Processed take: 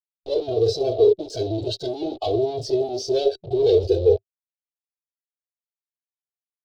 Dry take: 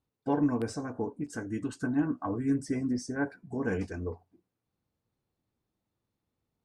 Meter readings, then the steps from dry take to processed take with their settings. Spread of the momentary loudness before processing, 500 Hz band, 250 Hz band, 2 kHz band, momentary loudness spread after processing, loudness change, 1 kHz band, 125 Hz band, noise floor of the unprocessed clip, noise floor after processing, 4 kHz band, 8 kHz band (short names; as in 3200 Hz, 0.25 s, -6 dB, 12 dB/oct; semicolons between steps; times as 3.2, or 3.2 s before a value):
8 LU, +18.0 dB, -0.5 dB, under -10 dB, 9 LU, +10.5 dB, +5.5 dB, +6.0 dB, under -85 dBFS, under -85 dBFS, +20.0 dB, +5.5 dB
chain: fuzz box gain 56 dB, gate -51 dBFS; EQ curve 110 Hz 0 dB, 220 Hz -27 dB, 390 Hz +14 dB, 670 Hz +8 dB, 1000 Hz -16 dB, 1800 Hz -27 dB, 3900 Hz +10 dB, 7800 Hz -22 dB, 12000 Hz -27 dB; spectral noise reduction 12 dB; gain -8.5 dB